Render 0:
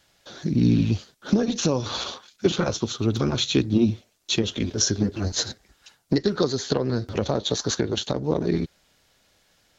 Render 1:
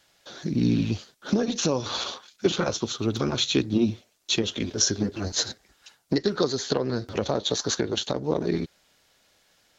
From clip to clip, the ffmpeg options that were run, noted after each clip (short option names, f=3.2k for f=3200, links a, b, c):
-af "lowshelf=f=190:g=-7.5"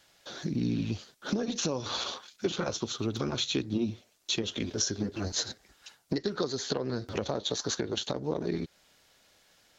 -af "acompressor=threshold=-32dB:ratio=2"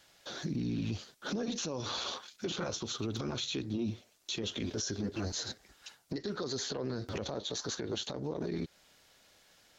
-af "alimiter=level_in=3dB:limit=-24dB:level=0:latency=1:release=28,volume=-3dB"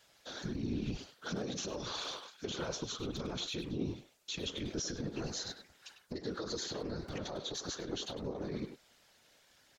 -filter_complex "[0:a]asplit=2[a][b];[b]adelay=100,highpass=300,lowpass=3.4k,asoftclip=type=hard:threshold=-36dB,volume=-6dB[c];[a][c]amix=inputs=2:normalize=0,afftfilt=real='hypot(re,im)*cos(2*PI*random(0))':imag='hypot(re,im)*sin(2*PI*random(1))':win_size=512:overlap=0.75,volume=3dB"